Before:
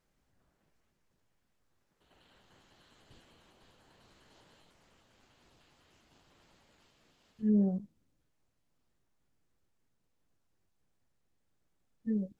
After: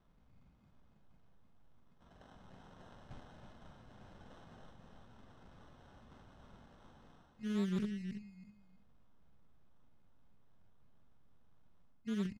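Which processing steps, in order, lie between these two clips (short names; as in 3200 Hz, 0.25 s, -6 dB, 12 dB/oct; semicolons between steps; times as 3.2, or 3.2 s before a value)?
elliptic band-stop 240–3000 Hz; reverse; compressor 6:1, threshold -45 dBFS, peak gain reduction 19 dB; reverse; sample-and-hold 19×; air absorption 94 m; doubler 44 ms -9 dB; feedback echo 0.325 s, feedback 21%, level -7.5 dB; Doppler distortion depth 0.57 ms; gain +9.5 dB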